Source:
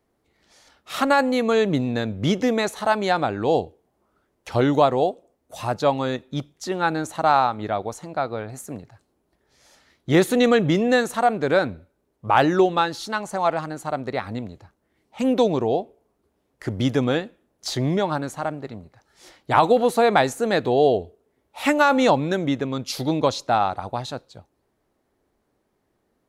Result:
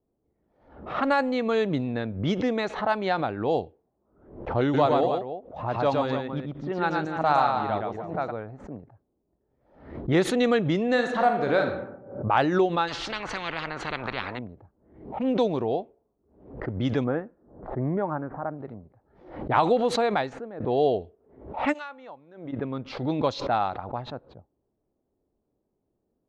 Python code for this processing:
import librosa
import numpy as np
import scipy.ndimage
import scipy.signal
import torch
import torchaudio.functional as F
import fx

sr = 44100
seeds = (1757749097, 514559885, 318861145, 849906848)

y = fx.echo_multitap(x, sr, ms=(115, 294), db=(-3.0, -9.5), at=(4.73, 8.3), fade=0.02)
y = fx.reverb_throw(y, sr, start_s=10.88, length_s=0.84, rt60_s=1.0, drr_db=3.5)
y = fx.spectral_comp(y, sr, ratio=10.0, at=(12.87, 14.37), fade=0.02)
y = fx.lowpass(y, sr, hz=1600.0, slope=24, at=(17.03, 18.57), fade=0.02)
y = fx.pre_emphasis(y, sr, coefficient=0.97, at=(21.72, 22.52), fade=0.02)
y = fx.edit(y, sr, fx.fade_out_to(start_s=19.65, length_s=0.95, curve='qsin', floor_db=-21.0), tone=tone)
y = fx.env_lowpass(y, sr, base_hz=590.0, full_db=-14.0)
y = scipy.signal.sosfilt(scipy.signal.butter(2, 4700.0, 'lowpass', fs=sr, output='sos'), y)
y = fx.pre_swell(y, sr, db_per_s=95.0)
y = y * librosa.db_to_amplitude(-5.0)